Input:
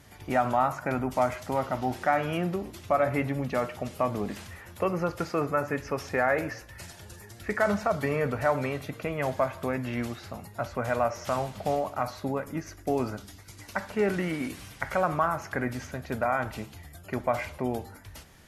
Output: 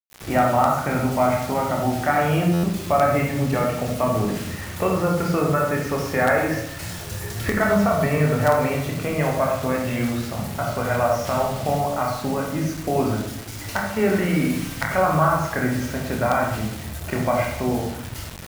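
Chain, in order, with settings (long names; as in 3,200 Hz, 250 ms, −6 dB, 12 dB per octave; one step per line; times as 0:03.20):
camcorder AGC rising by 9.3 dB per second
convolution reverb RT60 0.80 s, pre-delay 27 ms, DRR −0.5 dB
in parallel at −8 dB: wrap-around overflow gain 9.5 dB
on the sum: bit reduction 6 bits
buffer that repeats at 0:02.53, samples 512, times 8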